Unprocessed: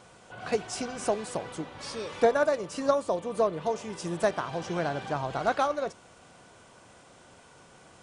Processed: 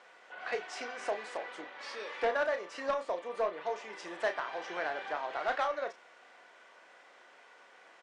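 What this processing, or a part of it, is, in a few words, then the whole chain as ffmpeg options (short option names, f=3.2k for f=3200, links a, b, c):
intercom: -filter_complex "[0:a]highpass=210,highpass=480,lowpass=4.3k,equalizer=f=1.9k:t=o:w=0.56:g=9,asoftclip=type=tanh:threshold=-19dB,asplit=2[a][b];[b]adelay=33,volume=-8.5dB[c];[a][c]amix=inputs=2:normalize=0,volume=-4dB"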